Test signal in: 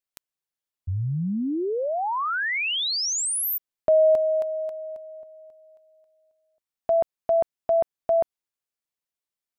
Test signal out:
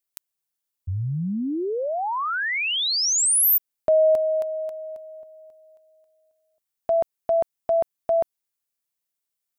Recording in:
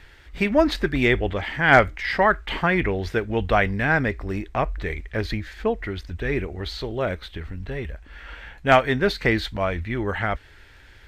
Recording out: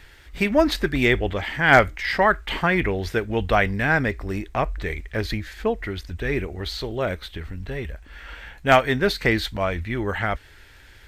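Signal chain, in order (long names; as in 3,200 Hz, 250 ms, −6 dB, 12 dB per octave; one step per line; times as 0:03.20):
high-shelf EQ 6,800 Hz +10 dB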